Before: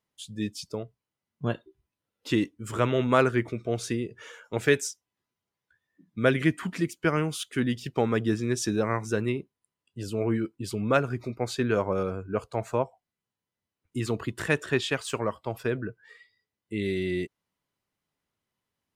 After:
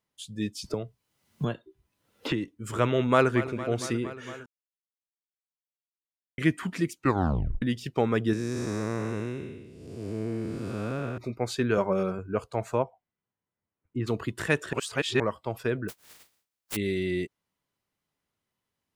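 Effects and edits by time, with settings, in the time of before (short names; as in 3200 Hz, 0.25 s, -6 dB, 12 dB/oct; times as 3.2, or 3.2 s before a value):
0.64–2.48 three-band squash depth 100%
3.01–3.44 echo throw 0.23 s, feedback 80%, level -14.5 dB
4.46–6.38 mute
6.95 tape stop 0.67 s
8.33–11.18 time blur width 0.471 s
11.77–12.19 comb 5.2 ms, depth 59%
12.82–14.06 LPF 2700 Hz -> 1600 Hz
14.73–15.2 reverse
15.88–16.75 spectral contrast lowered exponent 0.1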